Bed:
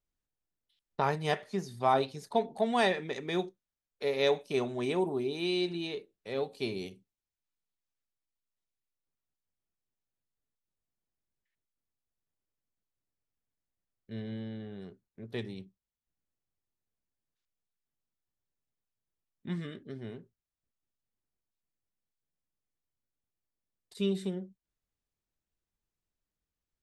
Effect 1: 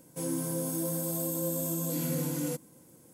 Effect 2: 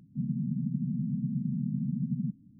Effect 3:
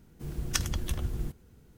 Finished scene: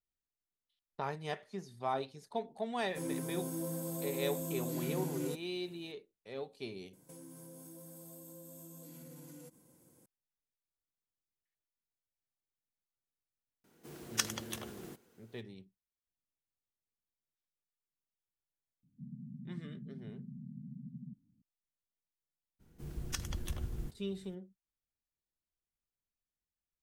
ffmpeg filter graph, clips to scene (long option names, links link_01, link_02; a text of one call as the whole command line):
ffmpeg -i bed.wav -i cue0.wav -i cue1.wav -i cue2.wav -filter_complex "[1:a]asplit=2[link_01][link_02];[3:a]asplit=2[link_03][link_04];[0:a]volume=-9dB[link_05];[link_01]highshelf=frequency=4300:gain=-5.5[link_06];[link_02]acompressor=threshold=-41dB:ratio=6:attack=3.2:release=140:knee=1:detection=peak[link_07];[link_03]highpass=320[link_08];[link_04]alimiter=limit=-14dB:level=0:latency=1:release=186[link_09];[link_06]atrim=end=3.13,asetpts=PTS-STARTPTS,volume=-5.5dB,afade=type=in:duration=0.004:curve=hsin,afade=type=out:start_time=3.126:duration=0.004:curve=hsin,adelay=2790[link_10];[link_07]atrim=end=3.13,asetpts=PTS-STARTPTS,volume=-8.5dB,afade=type=in:duration=0.004:curve=hsin,afade=type=out:start_time=3.126:duration=0.004:curve=hsin,adelay=6930[link_11];[link_08]atrim=end=1.77,asetpts=PTS-STARTPTS,volume=-2dB,afade=type=in:duration=0.004:curve=hsin,afade=type=out:start_time=1.766:duration=0.004:curve=hsin,adelay=601524S[link_12];[2:a]atrim=end=2.59,asetpts=PTS-STARTPTS,volume=-16dB,afade=type=in:duration=0.004:curve=hsin,afade=type=out:start_time=2.586:duration=0.004:curve=hsin,adelay=18830[link_13];[link_09]atrim=end=1.77,asetpts=PTS-STARTPTS,volume=-7dB,afade=type=in:duration=0.02,afade=type=out:start_time=1.75:duration=0.02,adelay=22590[link_14];[link_05][link_10][link_11][link_12][link_13][link_14]amix=inputs=6:normalize=0" out.wav